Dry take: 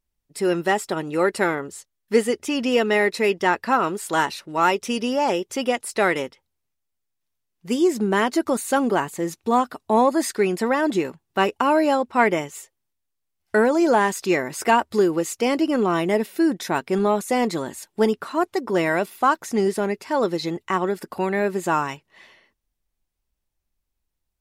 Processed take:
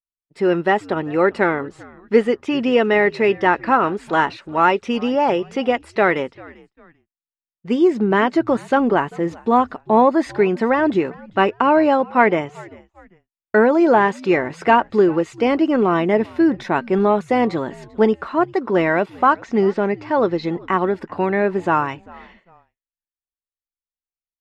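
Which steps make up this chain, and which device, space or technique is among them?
0:19.33–0:20.43: low-pass filter 7,300 Hz 24 dB per octave
echo with shifted repeats 393 ms, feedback 35%, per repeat −85 Hz, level −23 dB
hearing-loss simulation (low-pass filter 2,600 Hz 12 dB per octave; downward expander −49 dBFS)
level +4 dB

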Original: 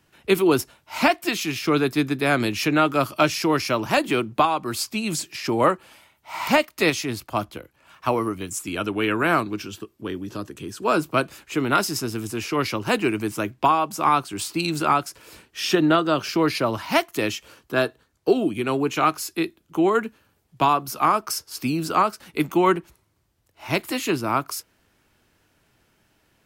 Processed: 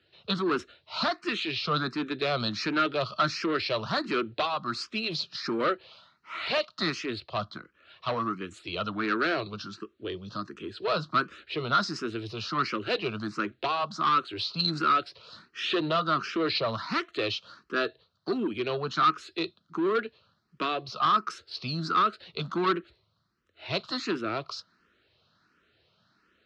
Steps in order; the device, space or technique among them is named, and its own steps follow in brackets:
barber-pole phaser into a guitar amplifier (frequency shifter mixed with the dry sound +1.4 Hz; soft clipping −21 dBFS, distortion −10 dB; loudspeaker in its box 99–4,600 Hz, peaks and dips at 130 Hz −3 dB, 280 Hz −6 dB, 850 Hz −10 dB, 1,300 Hz +7 dB, 2,200 Hz −4 dB, 4,100 Hz +10 dB)

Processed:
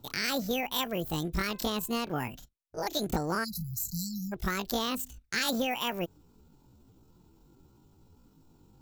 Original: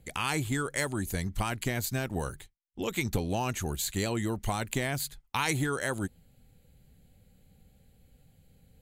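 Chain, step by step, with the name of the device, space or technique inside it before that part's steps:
0:01.39–0:02.08: hum removal 290.1 Hz, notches 5
chipmunk voice (pitch shifter +10 semitones)
0:03.44–0:04.33: time-frequency box erased 230–3,900 Hz

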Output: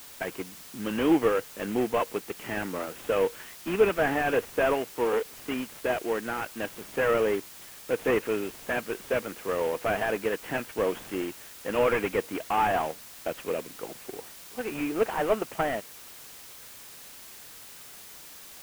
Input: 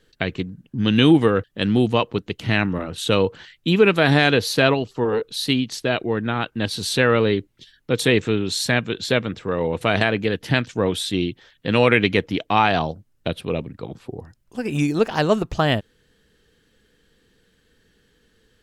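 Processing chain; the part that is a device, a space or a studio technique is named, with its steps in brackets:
army field radio (band-pass filter 390–3,100 Hz; variable-slope delta modulation 16 kbit/s; white noise bed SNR 17 dB)
level −2 dB

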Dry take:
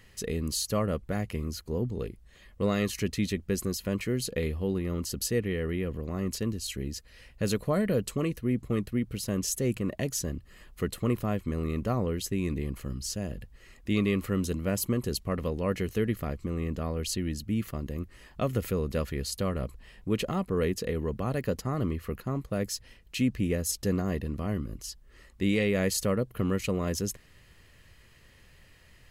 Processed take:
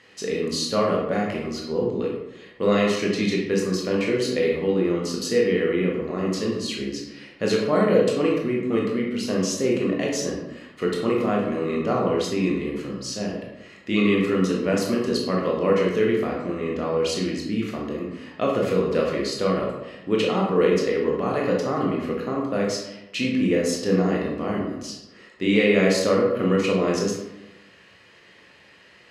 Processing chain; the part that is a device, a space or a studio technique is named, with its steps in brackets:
supermarket ceiling speaker (band-pass filter 260–5,200 Hz; convolution reverb RT60 0.95 s, pre-delay 17 ms, DRR −2.5 dB)
level +5.5 dB

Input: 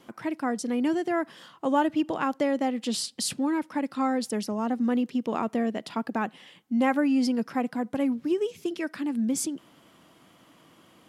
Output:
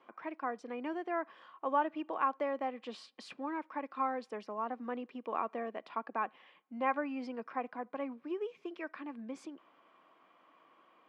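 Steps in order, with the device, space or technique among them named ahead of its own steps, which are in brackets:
tin-can telephone (band-pass filter 480–2,000 Hz; hollow resonant body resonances 1,100/2,400 Hz, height 9 dB, ringing for 30 ms)
level −6 dB

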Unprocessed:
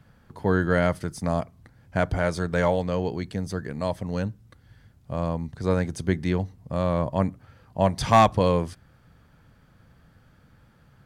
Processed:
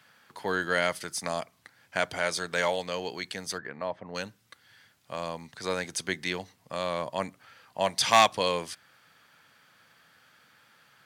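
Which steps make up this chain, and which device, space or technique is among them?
high-pass filter 89 Hz
dynamic equaliser 1,400 Hz, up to −5 dB, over −36 dBFS, Q 0.79
filter by subtraction (in parallel: low-pass filter 2,700 Hz 12 dB per octave + polarity inversion)
0:03.57–0:04.14: on the sum: low-pass filter 2,000 Hz → 1,100 Hz 12 dB per octave
level +6.5 dB

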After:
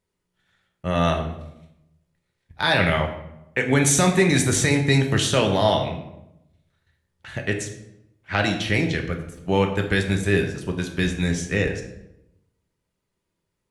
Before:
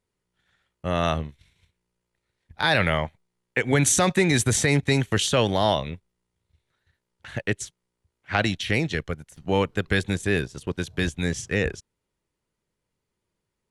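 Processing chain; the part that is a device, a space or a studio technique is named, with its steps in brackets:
bathroom (convolution reverb RT60 0.85 s, pre-delay 3 ms, DRR 2.5 dB)

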